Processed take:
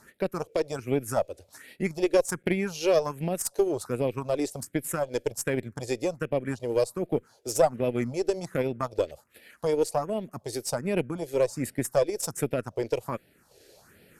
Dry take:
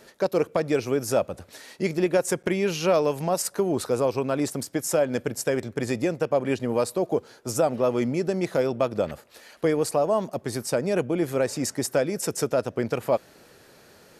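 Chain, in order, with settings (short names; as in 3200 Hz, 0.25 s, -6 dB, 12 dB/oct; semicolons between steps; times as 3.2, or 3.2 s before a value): transient shaper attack 0 dB, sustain -6 dB; phaser stages 4, 1.3 Hz, lowest notch 170–1100 Hz; added harmonics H 2 -19 dB, 3 -21 dB, 6 -39 dB, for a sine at -11.5 dBFS; gain +2 dB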